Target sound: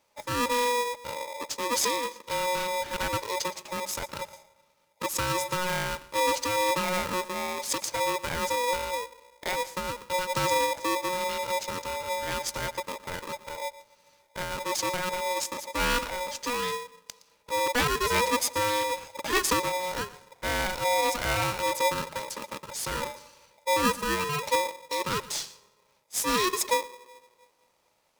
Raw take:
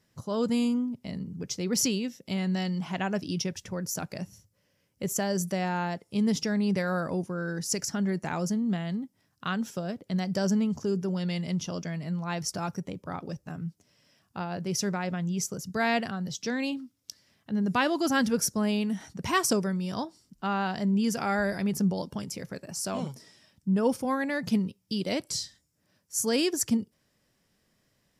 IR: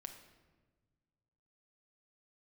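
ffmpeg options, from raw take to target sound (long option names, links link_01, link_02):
-filter_complex "[0:a]asettb=1/sr,asplit=3[link_01][link_02][link_03];[link_01]atrim=end=19.694[link_04];[link_02]atrim=start=19.69:end=21.44,asetpts=PTS-STARTPTS,afade=type=in:duration=0.004:curve=qsin,afade=type=out:start_time=1.746:duration=0.004:curve=qsin,aeval=exprs='0.126*(cos(1*acos(clip(val(0)/0.126,-1,1)))-cos(1*PI/2))+0.0224*(cos(2*acos(clip(val(0)/0.126,-1,1)))-cos(2*PI/2))':channel_layout=same[link_05];[link_03]atrim=start=21.436[link_06];[link_04][link_05]acrossfade=duration=0.004:curve1=hsin:curve2=qsin[link_07];[link_07][link_06]acrossfade=duration=0.004:curve1=qsin:curve2=hsin,asplit=2[link_08][link_09];[1:a]atrim=start_sample=2205,adelay=116[link_10];[link_09][link_10]afir=irnorm=-1:irlink=0,volume=-12.5dB[link_11];[link_08][link_11]amix=inputs=2:normalize=0,aeval=exprs='val(0)*sgn(sin(2*PI*730*n/s))':channel_layout=same"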